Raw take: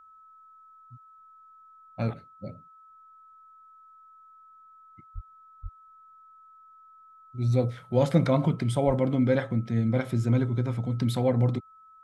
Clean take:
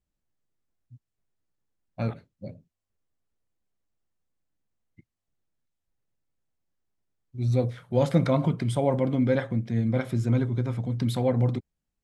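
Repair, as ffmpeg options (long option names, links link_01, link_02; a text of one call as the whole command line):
ffmpeg -i in.wav -filter_complex "[0:a]bandreject=frequency=1300:width=30,asplit=3[link_01][link_02][link_03];[link_01]afade=type=out:start_time=5.14:duration=0.02[link_04];[link_02]highpass=frequency=140:width=0.5412,highpass=frequency=140:width=1.3066,afade=type=in:start_time=5.14:duration=0.02,afade=type=out:start_time=5.26:duration=0.02[link_05];[link_03]afade=type=in:start_time=5.26:duration=0.02[link_06];[link_04][link_05][link_06]amix=inputs=3:normalize=0,asplit=3[link_07][link_08][link_09];[link_07]afade=type=out:start_time=5.62:duration=0.02[link_10];[link_08]highpass=frequency=140:width=0.5412,highpass=frequency=140:width=1.3066,afade=type=in:start_time=5.62:duration=0.02,afade=type=out:start_time=5.74:duration=0.02[link_11];[link_09]afade=type=in:start_time=5.74:duration=0.02[link_12];[link_10][link_11][link_12]amix=inputs=3:normalize=0,asplit=3[link_13][link_14][link_15];[link_13]afade=type=out:start_time=8.86:duration=0.02[link_16];[link_14]highpass=frequency=140:width=0.5412,highpass=frequency=140:width=1.3066,afade=type=in:start_time=8.86:duration=0.02,afade=type=out:start_time=8.98:duration=0.02[link_17];[link_15]afade=type=in:start_time=8.98:duration=0.02[link_18];[link_16][link_17][link_18]amix=inputs=3:normalize=0" out.wav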